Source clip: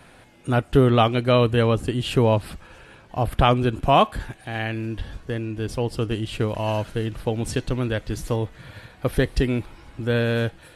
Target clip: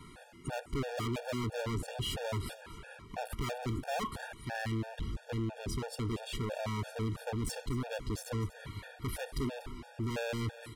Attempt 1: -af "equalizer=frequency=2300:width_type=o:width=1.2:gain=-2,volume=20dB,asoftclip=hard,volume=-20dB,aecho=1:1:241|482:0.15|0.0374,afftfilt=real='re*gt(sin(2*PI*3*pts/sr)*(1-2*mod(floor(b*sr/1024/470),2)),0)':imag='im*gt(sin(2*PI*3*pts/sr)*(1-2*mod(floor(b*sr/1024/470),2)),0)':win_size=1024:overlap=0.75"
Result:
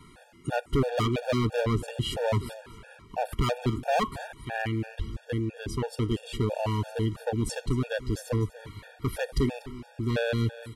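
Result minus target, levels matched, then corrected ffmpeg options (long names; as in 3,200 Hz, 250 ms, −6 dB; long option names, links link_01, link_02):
gain into a clipping stage and back: distortion −6 dB
-af "equalizer=frequency=2300:width_type=o:width=1.2:gain=-2,volume=31.5dB,asoftclip=hard,volume=-31.5dB,aecho=1:1:241|482:0.15|0.0374,afftfilt=real='re*gt(sin(2*PI*3*pts/sr)*(1-2*mod(floor(b*sr/1024/470),2)),0)':imag='im*gt(sin(2*PI*3*pts/sr)*(1-2*mod(floor(b*sr/1024/470),2)),0)':win_size=1024:overlap=0.75"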